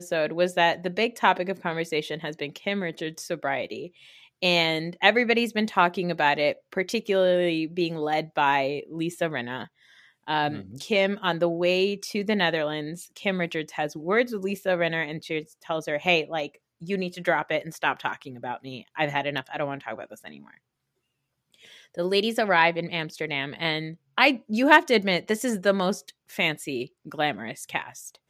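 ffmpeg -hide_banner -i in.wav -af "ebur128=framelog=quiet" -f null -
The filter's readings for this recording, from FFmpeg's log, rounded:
Integrated loudness:
  I:         -25.3 LUFS
  Threshold: -35.8 LUFS
Loudness range:
  LRA:         7.0 LU
  Threshold: -45.8 LUFS
  LRA low:   -29.9 LUFS
  LRA high:  -22.8 LUFS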